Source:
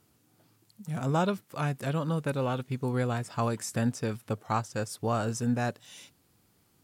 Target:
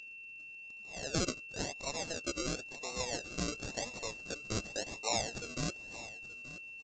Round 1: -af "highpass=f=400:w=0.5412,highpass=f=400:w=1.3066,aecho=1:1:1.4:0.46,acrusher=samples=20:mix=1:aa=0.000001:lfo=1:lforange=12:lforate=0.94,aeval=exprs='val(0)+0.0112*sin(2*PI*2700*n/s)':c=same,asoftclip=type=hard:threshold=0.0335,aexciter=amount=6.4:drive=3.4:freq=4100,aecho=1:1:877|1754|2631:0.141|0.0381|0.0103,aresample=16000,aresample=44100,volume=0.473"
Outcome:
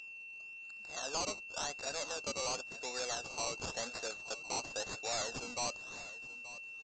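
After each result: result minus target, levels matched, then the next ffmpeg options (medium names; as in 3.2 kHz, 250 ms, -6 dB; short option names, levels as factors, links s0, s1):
decimation with a swept rate: distortion -34 dB; hard clipper: distortion +16 dB
-af "highpass=f=400:w=0.5412,highpass=f=400:w=1.3066,aecho=1:1:1.4:0.46,acrusher=samples=39:mix=1:aa=0.000001:lfo=1:lforange=23.4:lforate=0.94,aeval=exprs='val(0)+0.0112*sin(2*PI*2700*n/s)':c=same,asoftclip=type=hard:threshold=0.0335,aexciter=amount=6.4:drive=3.4:freq=4100,aecho=1:1:877|1754|2631:0.141|0.0381|0.0103,aresample=16000,aresample=44100,volume=0.473"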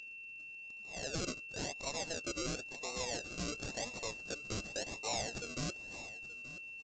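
hard clipper: distortion +16 dB
-af "highpass=f=400:w=0.5412,highpass=f=400:w=1.3066,aecho=1:1:1.4:0.46,acrusher=samples=39:mix=1:aa=0.000001:lfo=1:lforange=23.4:lforate=0.94,aeval=exprs='val(0)+0.0112*sin(2*PI*2700*n/s)':c=same,asoftclip=type=hard:threshold=0.1,aexciter=amount=6.4:drive=3.4:freq=4100,aecho=1:1:877|1754|2631:0.141|0.0381|0.0103,aresample=16000,aresample=44100,volume=0.473"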